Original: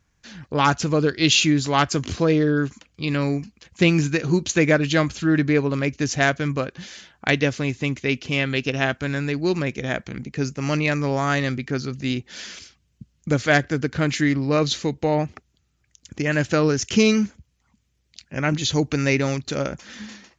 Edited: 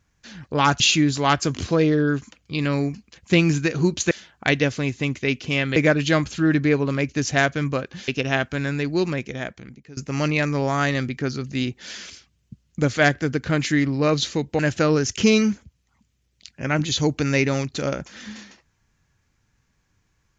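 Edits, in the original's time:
0:00.80–0:01.29: remove
0:06.92–0:08.57: move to 0:04.60
0:09.48–0:10.46: fade out, to −23 dB
0:15.08–0:16.32: remove

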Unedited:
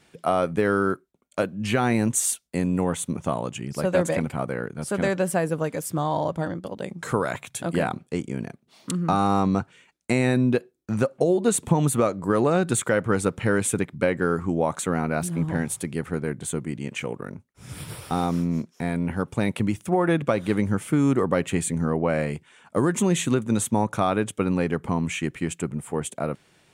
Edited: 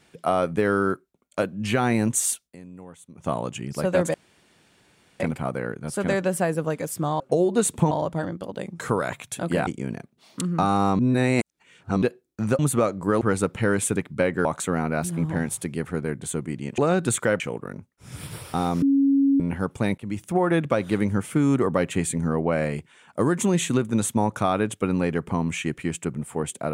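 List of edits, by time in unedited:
0:02.42–0:03.30: duck −19 dB, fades 0.14 s
0:04.14: splice in room tone 1.06 s
0:07.90–0:08.17: remove
0:09.49–0:10.52: reverse
0:11.09–0:11.80: move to 0:06.14
0:12.42–0:13.04: move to 0:16.97
0:14.28–0:14.64: remove
0:18.39–0:18.97: beep over 276 Hz −15.5 dBFS
0:19.55–0:19.82: fade in, from −23.5 dB

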